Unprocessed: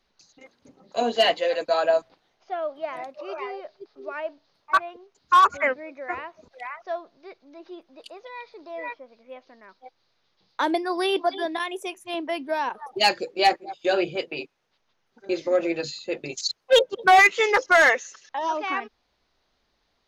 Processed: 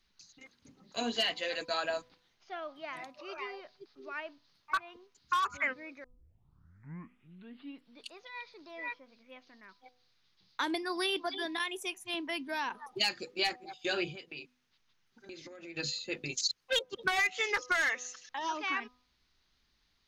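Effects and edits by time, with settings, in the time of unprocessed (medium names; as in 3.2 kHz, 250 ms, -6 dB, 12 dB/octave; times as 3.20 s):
6.04 s: tape start 2.08 s
14.10–15.77 s: compression 5:1, threshold -37 dBFS
whole clip: peaking EQ 590 Hz -14.5 dB 1.7 oct; de-hum 249 Hz, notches 5; compression 4:1, threshold -28 dBFS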